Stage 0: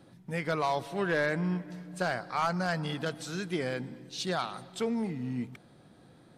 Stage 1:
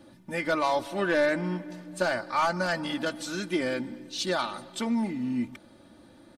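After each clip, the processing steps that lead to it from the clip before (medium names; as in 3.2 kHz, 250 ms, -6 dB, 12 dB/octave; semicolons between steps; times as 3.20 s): comb 3.4 ms, depth 76%; trim +2.5 dB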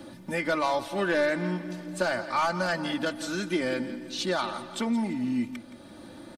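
feedback delay 169 ms, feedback 28%, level -15 dB; three bands compressed up and down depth 40%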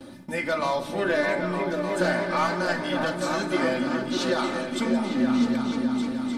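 gate with hold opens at -37 dBFS; delay with an opening low-pass 304 ms, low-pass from 200 Hz, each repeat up 2 oct, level 0 dB; reverberation RT60 0.45 s, pre-delay 4 ms, DRR 5.5 dB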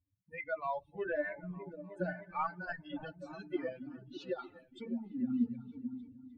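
expander on every frequency bin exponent 3; low-pass 2.1 kHz 12 dB/octave; trim -5.5 dB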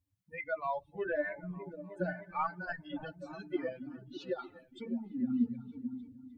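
band-stop 2.7 kHz, Q 27; trim +1.5 dB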